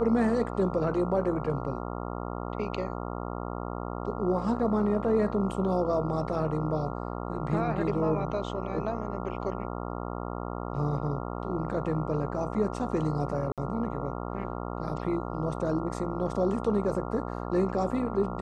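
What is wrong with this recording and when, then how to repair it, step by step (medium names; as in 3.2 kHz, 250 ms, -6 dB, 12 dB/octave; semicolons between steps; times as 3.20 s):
buzz 60 Hz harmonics 23 -35 dBFS
13.52–13.58 s: dropout 57 ms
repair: de-hum 60 Hz, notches 23; interpolate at 13.52 s, 57 ms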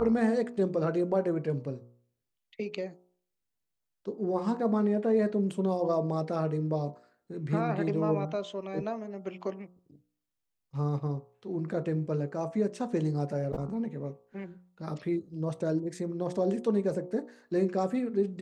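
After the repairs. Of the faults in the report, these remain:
nothing left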